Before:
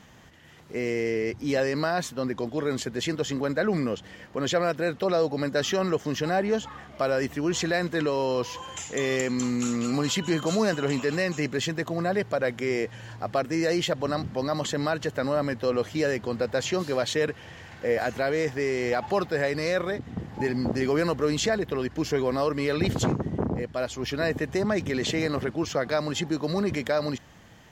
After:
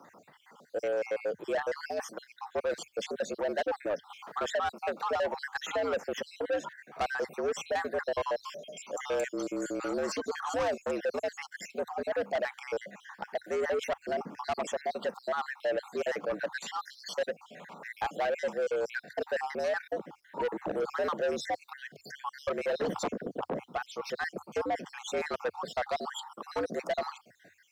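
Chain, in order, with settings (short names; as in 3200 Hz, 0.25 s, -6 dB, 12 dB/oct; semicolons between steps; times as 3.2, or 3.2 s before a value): random spectral dropouts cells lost 57%; band shelf 730 Hz +10 dB 2.4 oct; frequency shift +84 Hz; low shelf 500 Hz -2 dB; soft clip -20.5 dBFS, distortion -9 dB; bit-crush 12-bit; 4.1–6.2 three-band squash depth 40%; gain -5.5 dB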